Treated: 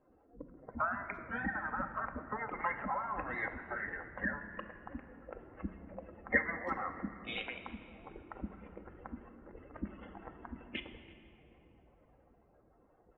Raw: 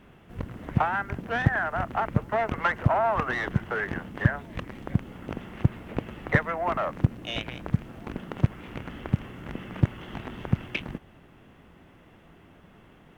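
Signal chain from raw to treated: spectral contrast enhancement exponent 2.4; high-pass 46 Hz; spectral gate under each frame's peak -15 dB weak; dynamic bell 1.8 kHz, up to +7 dB, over -59 dBFS, Q 1; level-controlled noise filter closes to 1.1 kHz, open at -35.5 dBFS; speakerphone echo 330 ms, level -24 dB; on a send at -6 dB: reverberation RT60 2.7 s, pre-delay 4 ms; on the sum: trim +2 dB

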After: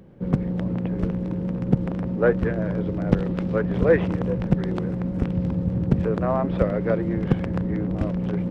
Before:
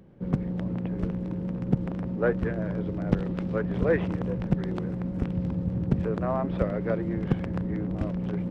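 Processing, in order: peaking EQ 500 Hz +2.5 dB 0.22 oct; trim +4.5 dB

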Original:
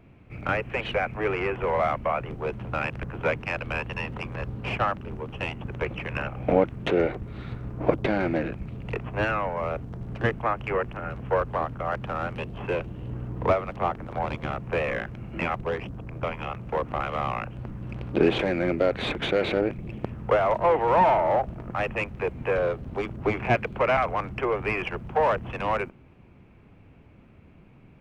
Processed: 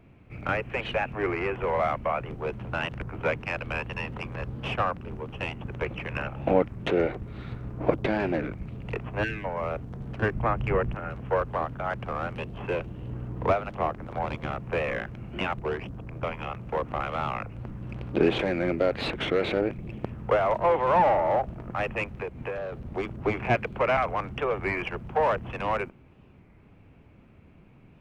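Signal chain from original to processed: 9.24–9.44 s: time-frequency box 480–1500 Hz -23 dB; 10.35–10.95 s: bass shelf 250 Hz +11 dB; 22.05–22.74 s: compression 6:1, threshold -29 dBFS, peak gain reduction 8.5 dB; warped record 33 1/3 rpm, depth 160 cents; trim -1.5 dB

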